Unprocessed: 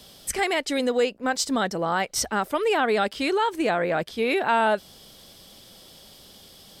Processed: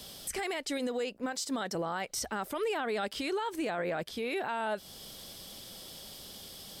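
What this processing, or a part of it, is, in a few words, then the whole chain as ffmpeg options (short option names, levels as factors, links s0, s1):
stacked limiters: -filter_complex "[0:a]highshelf=f=5700:g=4.5,asettb=1/sr,asplit=3[s0][s1][s2];[s0]atrim=end=1.324[s3];[s1]atrim=start=1.32:end=1.75,asetpts=PTS-STARTPTS,afade=t=in:d=0.004:c=qsin,afade=t=out:st=0.426:d=0.004:c=qsin,highpass=f=210:p=1[s4];[s2]atrim=start=1.746[s5];[s3][s4]acrossfade=d=0.004:c1=hsin:c2=qsin[s6];[s6][s5]acrossfade=d=0.004:c1=qsin:c2=hsin,alimiter=limit=0.141:level=0:latency=1:release=24,alimiter=limit=0.0841:level=0:latency=1:release=128,alimiter=level_in=1.19:limit=0.0631:level=0:latency=1:release=313,volume=0.841"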